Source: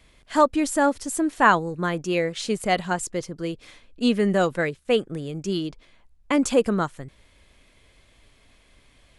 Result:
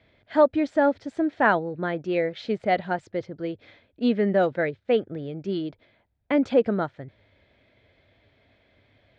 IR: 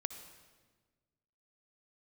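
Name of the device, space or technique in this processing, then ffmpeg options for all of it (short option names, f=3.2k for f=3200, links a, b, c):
guitar cabinet: -af "highpass=100,equalizer=f=100:t=q:w=4:g=9,equalizer=f=170:t=q:w=4:g=-4,equalizer=f=630:t=q:w=4:g=5,equalizer=f=1.1k:t=q:w=4:g=-10,equalizer=f=2.8k:t=q:w=4:g=-8,lowpass=f=3.5k:w=0.5412,lowpass=f=3.5k:w=1.3066,volume=-1dB"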